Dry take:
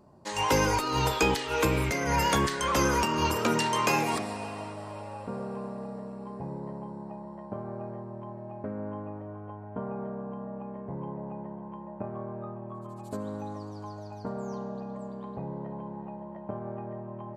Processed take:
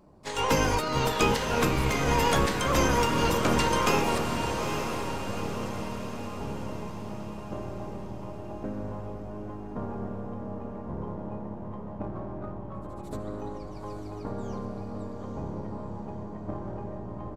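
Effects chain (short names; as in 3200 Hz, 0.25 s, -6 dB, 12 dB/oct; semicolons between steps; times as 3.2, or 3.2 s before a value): half-wave gain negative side -3 dB; harmoniser -12 st -3 dB, +3 st -13 dB; diffused feedback echo 0.862 s, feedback 51%, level -6.5 dB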